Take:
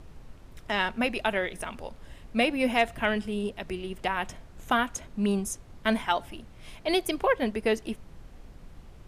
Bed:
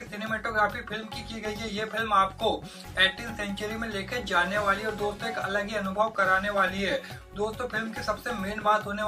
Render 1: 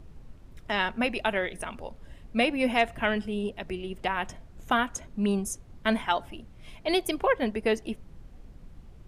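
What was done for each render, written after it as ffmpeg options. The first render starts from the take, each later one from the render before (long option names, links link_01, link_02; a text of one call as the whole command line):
ffmpeg -i in.wav -af "afftdn=noise_reduction=6:noise_floor=-50" out.wav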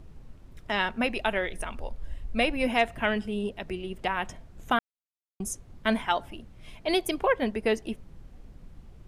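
ffmpeg -i in.wav -filter_complex "[0:a]asettb=1/sr,asplit=3[link_01][link_02][link_03];[link_01]atrim=end=0.964[link_04];[link_02]atrim=start=0.96:end=2.67,asetpts=PTS-STARTPTS,afade=type=in:duration=0.004:curve=qsin,afade=type=out:start_time=1.706:duration=0.004:curve=qsin,asubboost=boost=10:cutoff=76[link_05];[link_03]atrim=start=2.666[link_06];[link_04][link_05]acrossfade=duration=0.004:curve1=hsin:curve2=qsin[link_07];[link_07][link_06]acrossfade=duration=0.004:curve1=qsin:curve2=hsin,asplit=3[link_08][link_09][link_10];[link_08]atrim=end=4.79,asetpts=PTS-STARTPTS,afade=type=out:start_time=4.786:duration=0.004:curve=hsin[link_11];[link_09]atrim=start=4.79:end=5.4,asetpts=PTS-STARTPTS,volume=0[link_12];[link_10]atrim=start=5.4,asetpts=PTS-STARTPTS,afade=type=in:duration=0.004:curve=hsin[link_13];[link_11][link_12][link_13]concat=n=3:v=0:a=1" out.wav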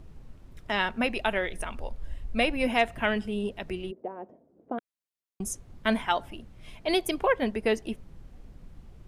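ffmpeg -i in.wav -filter_complex "[0:a]asplit=3[link_01][link_02][link_03];[link_01]afade=type=out:start_time=3.9:duration=0.02[link_04];[link_02]asuperpass=centerf=390:order=4:qfactor=1.1,afade=type=in:start_time=3.9:duration=0.02,afade=type=out:start_time=4.78:duration=0.02[link_05];[link_03]afade=type=in:start_time=4.78:duration=0.02[link_06];[link_04][link_05][link_06]amix=inputs=3:normalize=0" out.wav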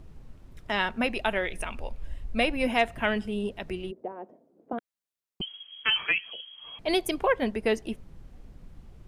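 ffmpeg -i in.wav -filter_complex "[0:a]asettb=1/sr,asplit=3[link_01][link_02][link_03];[link_01]atrim=end=1.454[link_04];[link_02]atrim=start=1.45:end=2.08,asetpts=PTS-STARTPTS,afade=type=in:duration=0.004:curve=qsin,afade=type=out:start_time=0.626:duration=0.004:curve=qsin,equalizer=frequency=2500:width=4.3:gain=8.5[link_05];[link_03]atrim=start=2.076[link_06];[link_04][link_05]acrossfade=duration=0.004:curve1=hsin:curve2=qsin[link_07];[link_07][link_06]acrossfade=duration=0.004:curve1=qsin:curve2=hsin,asettb=1/sr,asplit=3[link_08][link_09][link_10];[link_08]atrim=end=4.124[link_11];[link_09]atrim=start=4.12:end=4.73,asetpts=PTS-STARTPTS,afade=type=in:duration=0.004:curve=qsin,afade=type=out:start_time=0.606:duration=0.004:curve=qsin,highpass=180[link_12];[link_10]atrim=start=4.726[link_13];[link_11][link_12]acrossfade=duration=0.004:curve1=hsin:curve2=qsin[link_14];[link_14][link_13]acrossfade=duration=0.004:curve1=qsin:curve2=hsin,asettb=1/sr,asplit=3[link_15][link_16][link_17];[link_15]atrim=end=5.414[link_18];[link_16]atrim=start=5.41:end=6.79,asetpts=PTS-STARTPTS,afade=type=in:duration=0.004:curve=qsin,afade=type=out:start_time=1.376:duration=0.004:curve=qsin,lowpass=frequency=2800:width_type=q:width=0.5098,lowpass=frequency=2800:width_type=q:width=0.6013,lowpass=frequency=2800:width_type=q:width=0.9,lowpass=frequency=2800:width_type=q:width=2.563,afreqshift=-3300[link_19];[link_17]atrim=start=6.786[link_20];[link_18][link_19]acrossfade=duration=0.004:curve1=hsin:curve2=qsin[link_21];[link_21][link_20]acrossfade=duration=0.004:curve1=qsin:curve2=hsin" out.wav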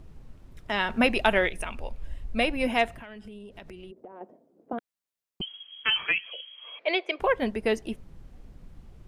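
ffmpeg -i in.wav -filter_complex "[0:a]asettb=1/sr,asplit=3[link_01][link_02][link_03];[link_01]atrim=end=0.894[link_04];[link_02]atrim=start=0.89:end=1.49,asetpts=PTS-STARTPTS,afade=type=in:duration=0.004:curve=qsin,afade=type=out:start_time=0.596:duration=0.004:curve=qsin,acontrast=34[link_05];[link_03]atrim=start=1.486[link_06];[link_04][link_05]acrossfade=duration=0.004:curve1=hsin:curve2=qsin[link_07];[link_07][link_06]acrossfade=duration=0.004:curve1=qsin:curve2=hsin,asettb=1/sr,asplit=3[link_08][link_09][link_10];[link_08]atrim=end=2.934[link_11];[link_09]atrim=start=2.93:end=4.21,asetpts=PTS-STARTPTS,afade=type=in:duration=0.004:curve=qsin,afade=type=out:start_time=1.276:duration=0.004:curve=qsin,acompressor=threshold=-40dB:ratio=10:attack=3.2:release=140:knee=1:detection=peak[link_12];[link_10]atrim=start=4.206[link_13];[link_11][link_12]acrossfade=duration=0.004:curve1=hsin:curve2=qsin[link_14];[link_14][link_13]acrossfade=duration=0.004:curve1=qsin:curve2=hsin,asettb=1/sr,asplit=3[link_15][link_16][link_17];[link_15]atrim=end=6.264[link_18];[link_16]atrim=start=6.26:end=7.2,asetpts=PTS-STARTPTS,afade=type=in:duration=0.004:curve=qsin,afade=type=out:start_time=0.936:duration=0.004:curve=qsin,highpass=frequency=410:width=0.5412,highpass=frequency=410:width=1.3066,equalizer=frequency=540:width_type=q:width=4:gain=7,equalizer=frequency=810:width_type=q:width=4:gain=-4,equalizer=frequency=2300:width_type=q:width=4:gain=9,lowpass=frequency=3800:width=0.5412,lowpass=frequency=3800:width=1.3066[link_19];[link_17]atrim=start=7.196[link_20];[link_18][link_19]acrossfade=duration=0.004:curve1=hsin:curve2=qsin[link_21];[link_21][link_20]acrossfade=duration=0.004:curve1=qsin:curve2=hsin" out.wav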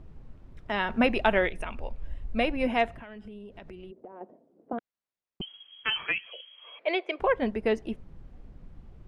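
ffmpeg -i in.wav -af "aemphasis=mode=reproduction:type=75kf" out.wav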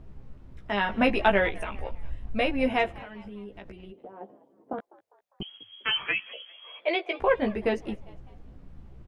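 ffmpeg -i in.wav -filter_complex "[0:a]asplit=2[link_01][link_02];[link_02]adelay=15,volume=-4dB[link_03];[link_01][link_03]amix=inputs=2:normalize=0,asplit=4[link_04][link_05][link_06][link_07];[link_05]adelay=201,afreqshift=100,volume=-22dB[link_08];[link_06]adelay=402,afreqshift=200,volume=-28.7dB[link_09];[link_07]adelay=603,afreqshift=300,volume=-35.5dB[link_10];[link_04][link_08][link_09][link_10]amix=inputs=4:normalize=0" out.wav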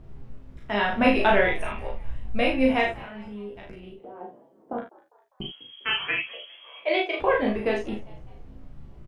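ffmpeg -i in.wav -filter_complex "[0:a]asplit=2[link_01][link_02];[link_02]adelay=34,volume=-3dB[link_03];[link_01][link_03]amix=inputs=2:normalize=0,asplit=2[link_04][link_05];[link_05]aecho=0:1:42|54:0.501|0.211[link_06];[link_04][link_06]amix=inputs=2:normalize=0" out.wav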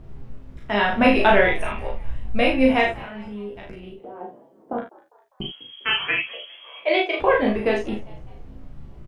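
ffmpeg -i in.wav -af "volume=4dB,alimiter=limit=-2dB:level=0:latency=1" out.wav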